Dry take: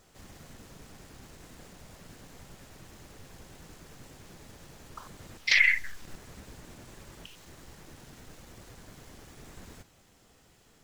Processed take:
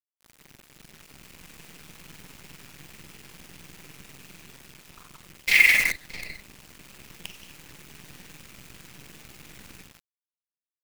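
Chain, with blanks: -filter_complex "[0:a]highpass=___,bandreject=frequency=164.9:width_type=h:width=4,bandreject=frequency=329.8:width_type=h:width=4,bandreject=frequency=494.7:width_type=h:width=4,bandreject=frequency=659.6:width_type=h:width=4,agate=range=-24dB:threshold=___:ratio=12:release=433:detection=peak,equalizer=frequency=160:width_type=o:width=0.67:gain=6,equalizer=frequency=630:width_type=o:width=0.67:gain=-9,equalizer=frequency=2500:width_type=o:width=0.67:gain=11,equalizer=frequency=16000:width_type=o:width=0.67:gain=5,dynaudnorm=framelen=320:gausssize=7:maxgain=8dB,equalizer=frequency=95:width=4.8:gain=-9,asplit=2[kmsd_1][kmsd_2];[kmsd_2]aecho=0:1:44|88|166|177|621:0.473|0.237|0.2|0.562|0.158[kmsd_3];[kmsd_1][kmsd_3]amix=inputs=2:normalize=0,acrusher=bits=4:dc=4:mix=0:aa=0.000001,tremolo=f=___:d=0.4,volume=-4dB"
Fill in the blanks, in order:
43, -53dB, 20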